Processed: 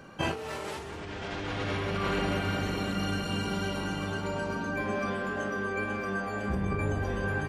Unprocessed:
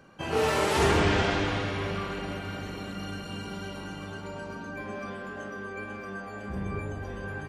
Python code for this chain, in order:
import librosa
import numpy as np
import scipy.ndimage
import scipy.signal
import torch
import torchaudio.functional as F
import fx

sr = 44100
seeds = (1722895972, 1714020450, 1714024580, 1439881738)

y = fx.over_compress(x, sr, threshold_db=-34.0, ratio=-1.0)
y = y * librosa.db_to_amplitude(2.5)